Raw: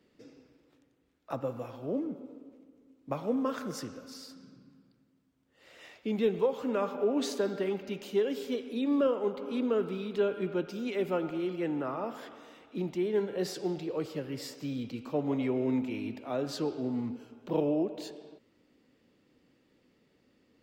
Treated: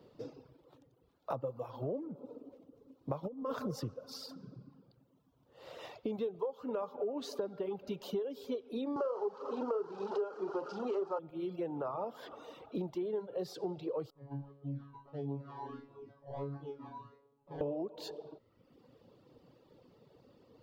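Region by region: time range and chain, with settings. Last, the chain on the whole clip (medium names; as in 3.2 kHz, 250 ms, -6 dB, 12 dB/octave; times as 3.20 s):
3.23–3.94 s: tone controls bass +6 dB, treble +1 dB + compressor with a negative ratio -32 dBFS, ratio -0.5
8.96–11.19 s: jump at every zero crossing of -33 dBFS + cabinet simulation 300–6100 Hz, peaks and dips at 400 Hz +8 dB, 850 Hz +6 dB, 1.3 kHz +10 dB, 2.2 kHz -9 dB, 3.6 kHz -9 dB + flutter echo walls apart 7 m, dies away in 0.32 s
14.10–17.61 s: decimation with a swept rate 24× 1.5 Hz + tape spacing loss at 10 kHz 38 dB + feedback comb 140 Hz, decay 0.73 s, mix 100%
whole clip: reverb removal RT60 1 s; ten-band graphic EQ 125 Hz +9 dB, 250 Hz -4 dB, 500 Hz +7 dB, 1 kHz +8 dB, 2 kHz -10 dB, 4 kHz +3 dB, 8 kHz -8 dB; compression 6:1, threshold -40 dBFS; trim +4.5 dB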